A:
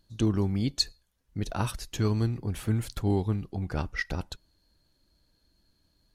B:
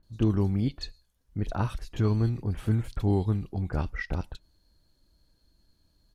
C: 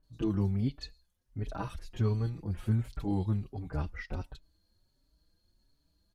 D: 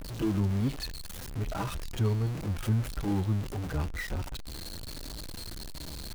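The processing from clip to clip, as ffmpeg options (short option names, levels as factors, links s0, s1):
-filter_complex "[0:a]acrossover=split=3200[s0][s1];[s1]acompressor=threshold=0.00224:ratio=4:attack=1:release=60[s2];[s0][s2]amix=inputs=2:normalize=0,lowshelf=f=78:g=6,acrossover=split=2300[s3][s4];[s4]adelay=30[s5];[s3][s5]amix=inputs=2:normalize=0"
-filter_complex "[0:a]asplit=2[s0][s1];[s1]adelay=4.8,afreqshift=1.4[s2];[s0][s2]amix=inputs=2:normalize=1,volume=0.75"
-af "aeval=exprs='val(0)+0.5*0.0211*sgn(val(0))':c=same"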